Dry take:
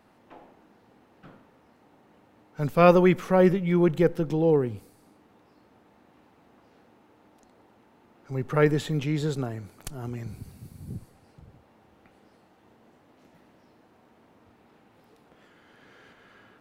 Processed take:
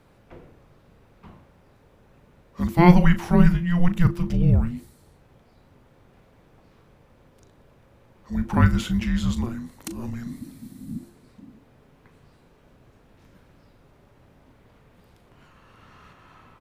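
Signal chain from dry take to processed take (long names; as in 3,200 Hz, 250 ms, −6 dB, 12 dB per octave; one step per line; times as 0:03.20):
double-tracking delay 38 ms −12 dB
frequency shifter −350 Hz
level +3.5 dB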